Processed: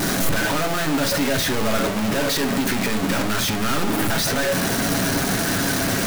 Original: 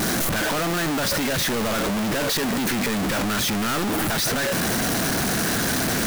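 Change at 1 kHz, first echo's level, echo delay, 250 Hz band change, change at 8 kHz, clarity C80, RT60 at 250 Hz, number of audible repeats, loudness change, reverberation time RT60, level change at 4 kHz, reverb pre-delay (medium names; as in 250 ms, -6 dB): +1.5 dB, no echo, no echo, +2.0 dB, +0.5 dB, 16.5 dB, 0.75 s, no echo, +1.5 dB, 0.50 s, +1.0 dB, 7 ms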